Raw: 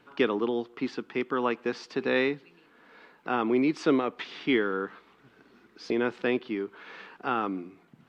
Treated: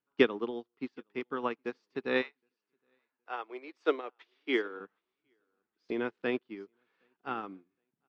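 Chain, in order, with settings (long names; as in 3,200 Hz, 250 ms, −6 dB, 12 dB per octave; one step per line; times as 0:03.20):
0:02.21–0:04.79: high-pass filter 710 Hz → 270 Hz 24 dB per octave
repeating echo 768 ms, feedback 35%, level −18 dB
expander for the loud parts 2.5 to 1, over −43 dBFS
level +2.5 dB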